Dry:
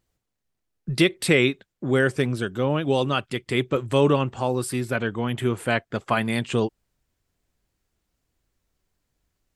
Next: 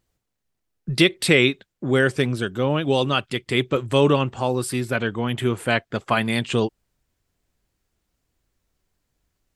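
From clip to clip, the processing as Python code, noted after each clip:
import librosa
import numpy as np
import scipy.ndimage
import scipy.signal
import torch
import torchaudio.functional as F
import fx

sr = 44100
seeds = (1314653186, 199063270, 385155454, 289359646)

y = fx.dynamic_eq(x, sr, hz=3700.0, q=1.0, threshold_db=-39.0, ratio=4.0, max_db=4)
y = y * librosa.db_to_amplitude(1.5)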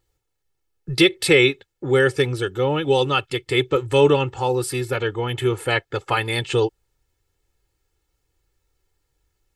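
y = x + 0.85 * np.pad(x, (int(2.3 * sr / 1000.0), 0))[:len(x)]
y = y * librosa.db_to_amplitude(-1.0)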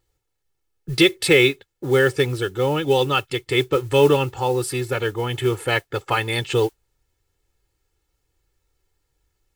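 y = fx.mod_noise(x, sr, seeds[0], snr_db=25)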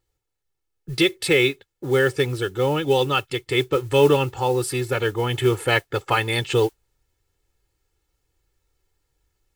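y = fx.rider(x, sr, range_db=10, speed_s=2.0)
y = y * librosa.db_to_amplitude(-1.5)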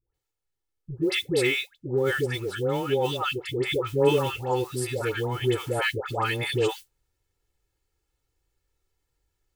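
y = fx.dispersion(x, sr, late='highs', ms=144.0, hz=900.0)
y = y * librosa.db_to_amplitude(-5.0)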